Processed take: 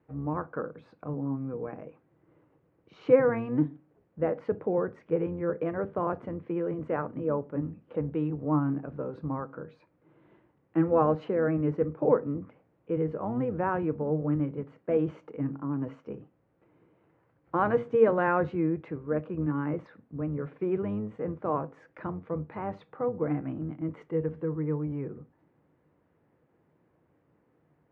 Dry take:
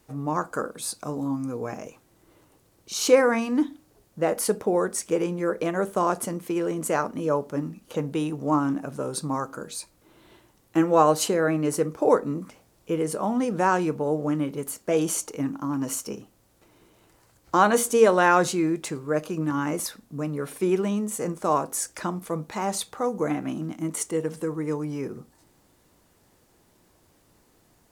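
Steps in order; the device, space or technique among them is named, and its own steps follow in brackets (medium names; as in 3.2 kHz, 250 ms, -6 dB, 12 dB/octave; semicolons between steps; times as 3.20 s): sub-octave bass pedal (octave divider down 1 oct, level -5 dB; cabinet simulation 86–2200 Hz, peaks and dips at 150 Hz +8 dB, 300 Hz +5 dB, 490 Hz +6 dB); trim -8.5 dB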